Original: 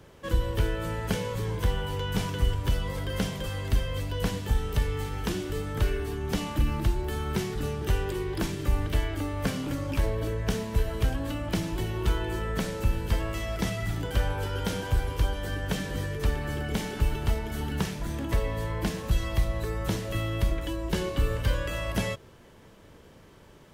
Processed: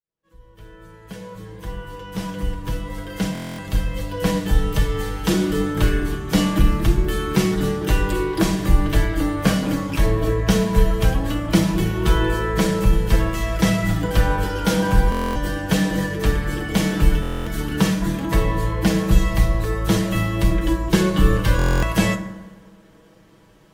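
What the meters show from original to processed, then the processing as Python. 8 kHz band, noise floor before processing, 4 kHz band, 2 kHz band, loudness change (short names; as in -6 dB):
+9.0 dB, -52 dBFS, +7.5 dB, +9.0 dB, +9.0 dB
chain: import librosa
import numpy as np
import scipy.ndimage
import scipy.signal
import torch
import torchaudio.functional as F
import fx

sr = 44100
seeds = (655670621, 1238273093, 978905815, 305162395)

y = fx.fade_in_head(x, sr, length_s=5.27)
y = y + 0.63 * np.pad(y, (int(6.2 * sr / 1000.0), 0))[:len(y)]
y = fx.rev_fdn(y, sr, rt60_s=1.5, lf_ratio=1.3, hf_ratio=0.4, size_ms=29.0, drr_db=7.0)
y = fx.buffer_glitch(y, sr, at_s=(3.33, 15.1, 17.21, 21.57), block=1024, repeats=10)
y = fx.band_widen(y, sr, depth_pct=40)
y = y * librosa.db_to_amplitude(7.5)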